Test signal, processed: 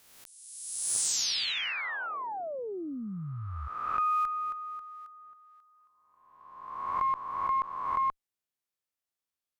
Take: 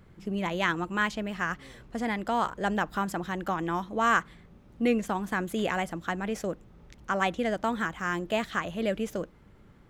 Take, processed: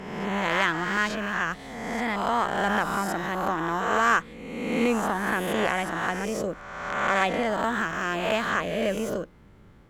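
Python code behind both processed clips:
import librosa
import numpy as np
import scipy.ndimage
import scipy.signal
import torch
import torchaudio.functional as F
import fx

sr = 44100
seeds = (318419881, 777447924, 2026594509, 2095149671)

y = fx.spec_swells(x, sr, rise_s=1.4)
y = fx.cheby_harmonics(y, sr, harmonics=(6,), levels_db=(-27,), full_scale_db=-8.0)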